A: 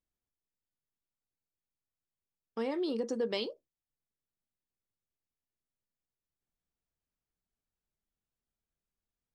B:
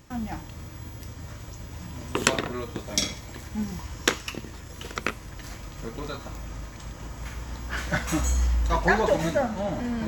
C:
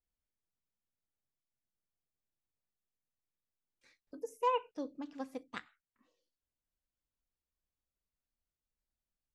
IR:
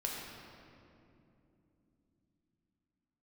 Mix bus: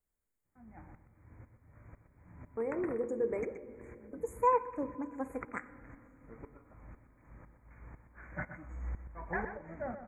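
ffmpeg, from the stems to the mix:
-filter_complex "[0:a]equalizer=f=440:t=o:w=0.77:g=7.5,volume=0.376,asplit=2[s0][s1];[s1]volume=0.316[s2];[1:a]lowpass=f=3900:w=0.5412,lowpass=f=3900:w=1.3066,aeval=exprs='val(0)*pow(10,-22*if(lt(mod(-2*n/s,1),2*abs(-2)/1000),1-mod(-2*n/s,1)/(2*abs(-2)/1000),(mod(-2*n/s,1)-2*abs(-2)/1000)/(1-2*abs(-2)/1000))/20)':c=same,adelay=450,volume=0.266,asplit=3[s3][s4][s5];[s4]volume=0.106[s6];[s5]volume=0.355[s7];[2:a]volume=1.33,asplit=2[s8][s9];[s9]volume=0.2[s10];[3:a]atrim=start_sample=2205[s11];[s2][s6][s10]amix=inputs=3:normalize=0[s12];[s12][s11]afir=irnorm=-1:irlink=0[s13];[s7]aecho=0:1:124:1[s14];[s0][s3][s8][s13][s14]amix=inputs=5:normalize=0,asuperstop=centerf=4000:order=20:qfactor=0.94"

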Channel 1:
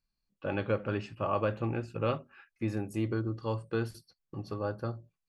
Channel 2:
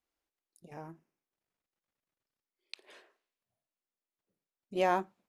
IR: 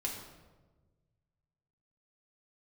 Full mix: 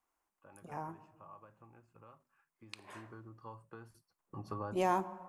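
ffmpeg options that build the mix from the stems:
-filter_complex "[0:a]acompressor=threshold=0.02:ratio=6,volume=0.75,afade=t=in:st=2.53:d=0.62:silence=0.354813,afade=t=in:st=4.11:d=0.44:silence=0.266073[s0];[1:a]volume=1,asplit=3[s1][s2][s3];[s2]volume=0.211[s4];[s3]apad=whole_len=233050[s5];[s0][s5]sidechaincompress=threshold=0.00794:ratio=8:attack=7.4:release=328[s6];[2:a]atrim=start_sample=2205[s7];[s4][s7]afir=irnorm=-1:irlink=0[s8];[s6][s1][s8]amix=inputs=3:normalize=0,acrossover=split=420|3000[s9][s10][s11];[s10]acompressor=threshold=0.00398:ratio=2[s12];[s9][s12][s11]amix=inputs=3:normalize=0,equalizer=f=500:t=o:w=1:g=-3,equalizer=f=1000:t=o:w=1:g=12,equalizer=f=4000:t=o:w=1:g=-8,equalizer=f=8000:t=o:w=1:g=4"

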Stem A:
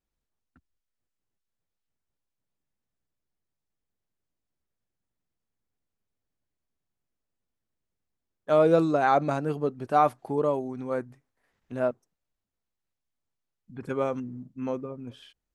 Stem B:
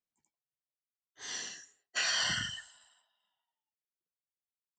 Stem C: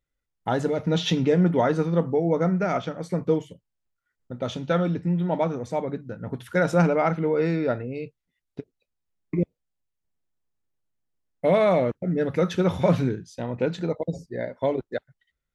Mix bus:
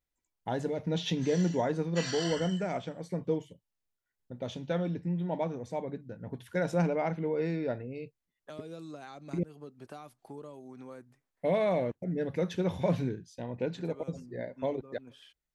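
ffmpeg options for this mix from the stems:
-filter_complex "[0:a]acompressor=threshold=0.0398:ratio=2,lowshelf=f=340:g=-9.5,acrossover=split=280|3000[s0][s1][s2];[s1]acompressor=threshold=0.00708:ratio=6[s3];[s0][s3][s2]amix=inputs=3:normalize=0,volume=0.596[s4];[1:a]aecho=1:1:3:0.78,volume=0.376[s5];[2:a]equalizer=f=1300:t=o:w=0.21:g=-12.5,volume=0.398,asplit=2[s6][s7];[s7]apad=whole_len=685349[s8];[s4][s8]sidechaincompress=threshold=0.02:ratio=8:attack=22:release=364[s9];[s9][s5][s6]amix=inputs=3:normalize=0"

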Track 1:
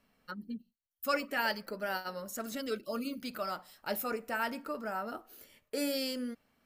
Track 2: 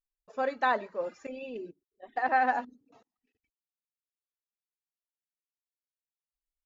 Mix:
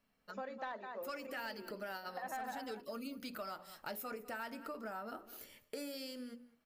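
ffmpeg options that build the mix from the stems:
-filter_complex "[0:a]dynaudnorm=f=320:g=7:m=2.99,volume=0.447,asplit=2[s0][s1];[s1]volume=0.0841[s2];[1:a]volume=0.708,asplit=2[s3][s4];[s4]volume=0.266[s5];[s2][s5]amix=inputs=2:normalize=0,aecho=0:1:202:1[s6];[s0][s3][s6]amix=inputs=3:normalize=0,bandreject=f=60:t=h:w=6,bandreject=f=120:t=h:w=6,bandreject=f=180:t=h:w=6,bandreject=f=240:t=h:w=6,bandreject=f=300:t=h:w=6,bandreject=f=360:t=h:w=6,bandreject=f=420:t=h:w=6,bandreject=f=480:t=h:w=6,bandreject=f=540:t=h:w=6,asoftclip=type=tanh:threshold=0.0891,acompressor=threshold=0.00708:ratio=4"

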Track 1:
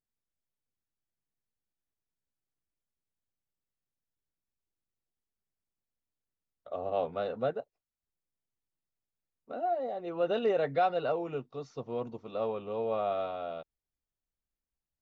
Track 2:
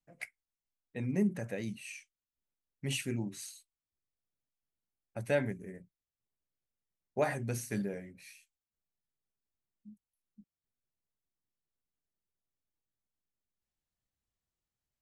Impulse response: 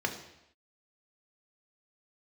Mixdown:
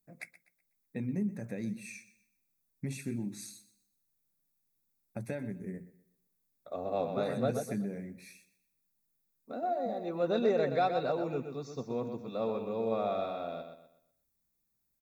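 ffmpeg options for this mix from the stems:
-filter_complex "[0:a]aemphasis=mode=production:type=75fm,volume=0.708,asplit=2[s0][s1];[s1]volume=0.422[s2];[1:a]acompressor=threshold=0.01:ratio=4,volume=1,asplit=2[s3][s4];[s4]volume=0.15[s5];[s2][s5]amix=inputs=2:normalize=0,aecho=0:1:124|248|372|496|620:1|0.33|0.109|0.0359|0.0119[s6];[s0][s3][s6]amix=inputs=3:normalize=0,asuperstop=centerf=3000:order=8:qfactor=4.8,equalizer=f=210:w=0.9:g=9"

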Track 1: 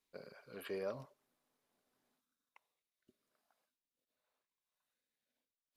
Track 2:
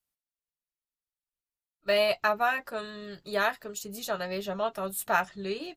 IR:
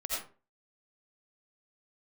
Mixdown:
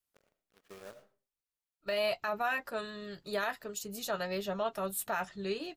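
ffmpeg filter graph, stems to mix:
-filter_complex "[0:a]lowpass=3200,acrusher=bits=7:mix=0:aa=0.000001,aeval=exprs='0.0398*(cos(1*acos(clip(val(0)/0.0398,-1,1)))-cos(1*PI/2))+0.00631*(cos(7*acos(clip(val(0)/0.0398,-1,1)))-cos(7*PI/2))':c=same,volume=0.335,asplit=2[s0][s1];[s1]volume=0.237[s2];[1:a]volume=0.794[s3];[2:a]atrim=start_sample=2205[s4];[s2][s4]afir=irnorm=-1:irlink=0[s5];[s0][s3][s5]amix=inputs=3:normalize=0,alimiter=limit=0.0668:level=0:latency=1:release=15"

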